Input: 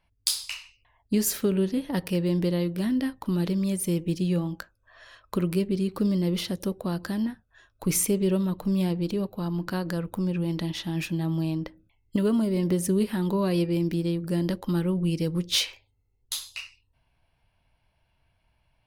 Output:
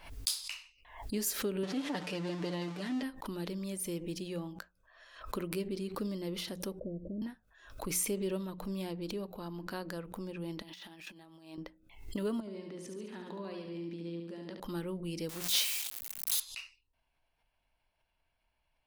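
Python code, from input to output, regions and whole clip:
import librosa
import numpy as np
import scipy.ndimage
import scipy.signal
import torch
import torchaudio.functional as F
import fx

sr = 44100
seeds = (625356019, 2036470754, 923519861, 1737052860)

y = fx.chain(x, sr, fx.zero_step(step_db=-31.0),
    fx.bandpass_edges(low_hz=140.0, high_hz=6400.0),
    fx.comb(ms=6.8, depth=0.57), at=(1.63, 3.03))
y = fx.chain(y, sr, fx.steep_lowpass(hz=620.0, slope=96),
    fx.low_shelf(hz=130.0, db=8.0), at=(6.79, 7.22))
y = fx.chain(y, sr, fx.highpass(hz=590.0, slope=6),
    fx.over_compress(threshold_db=-41.0, ratio=-0.5),
    fx.resample_linear(factor=2), at=(10.62, 11.58))
y = fx.chain(y, sr, fx.level_steps(step_db=16),
    fx.bandpass_edges(low_hz=130.0, high_hz=4900.0),
    fx.echo_feedback(ms=71, feedback_pct=56, wet_db=-5.0), at=(12.4, 14.6))
y = fx.chain(y, sr, fx.crossing_spikes(level_db=-21.0),
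    fx.low_shelf(hz=230.0, db=-9.0),
    fx.quant_companded(bits=4), at=(15.29, 16.4))
y = fx.peak_eq(y, sr, hz=110.0, db=-12.0, octaves=1.6)
y = fx.hum_notches(y, sr, base_hz=60, count=3)
y = fx.pre_swell(y, sr, db_per_s=95.0)
y = y * 10.0 ** (-7.5 / 20.0)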